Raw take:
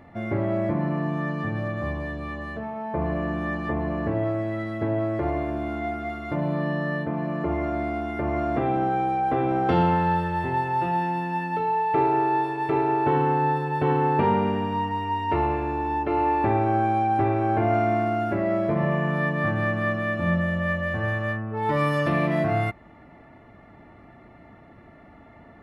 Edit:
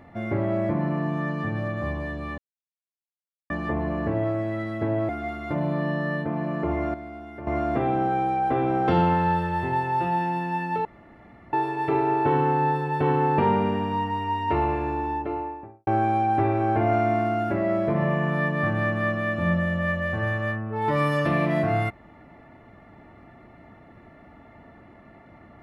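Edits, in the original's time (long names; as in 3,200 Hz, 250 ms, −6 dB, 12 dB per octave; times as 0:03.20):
0:02.38–0:03.50: silence
0:05.09–0:05.90: remove
0:07.75–0:08.28: clip gain −10.5 dB
0:11.66–0:12.34: fill with room tone
0:15.67–0:16.68: fade out and dull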